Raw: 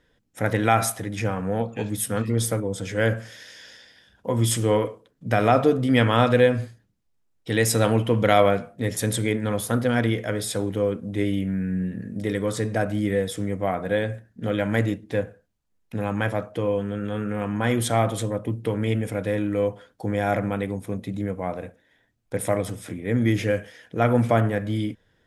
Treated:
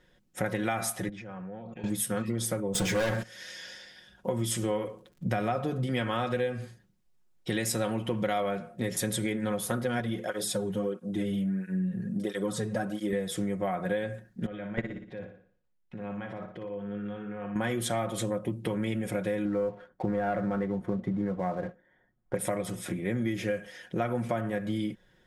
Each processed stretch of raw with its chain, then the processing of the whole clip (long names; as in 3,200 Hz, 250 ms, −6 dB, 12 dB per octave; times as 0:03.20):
0:01.09–0:01.84: output level in coarse steps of 21 dB + high-frequency loss of the air 140 metres
0:02.74–0:03.23: downward expander −33 dBFS + mains-hum notches 60/120/180/240/300/360/420/480/540 Hz + leveller curve on the samples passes 5
0:04.86–0:05.85: low-shelf EQ 180 Hz +6.5 dB + surface crackle 26 per second −48 dBFS
0:10.00–0:13.13: parametric band 2,200 Hz −7.5 dB 0.52 octaves + through-zero flanger with one copy inverted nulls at 1.5 Hz, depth 3.9 ms
0:14.46–0:17.56: low-pass filter 3,300 Hz + output level in coarse steps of 20 dB + flutter between parallel walls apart 10.1 metres, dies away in 0.5 s
0:19.45–0:22.35: Savitzky-Golay smoothing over 41 samples + leveller curve on the samples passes 1
whole clip: comb filter 5.5 ms, depth 63%; downward compressor 6 to 1, threshold −27 dBFS